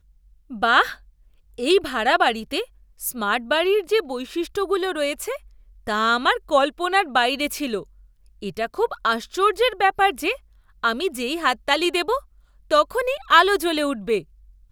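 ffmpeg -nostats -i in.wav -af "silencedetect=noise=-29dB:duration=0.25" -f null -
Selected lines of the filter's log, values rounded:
silence_start: 0.00
silence_end: 0.52 | silence_duration: 0.52
silence_start: 0.93
silence_end: 1.59 | silence_duration: 0.66
silence_start: 2.63
silence_end: 3.01 | silence_duration: 0.38
silence_start: 5.36
silence_end: 5.87 | silence_duration: 0.51
silence_start: 7.82
silence_end: 8.42 | silence_duration: 0.61
silence_start: 10.35
silence_end: 10.84 | silence_duration: 0.48
silence_start: 12.19
silence_end: 12.71 | silence_duration: 0.52
silence_start: 14.21
silence_end: 14.72 | silence_duration: 0.51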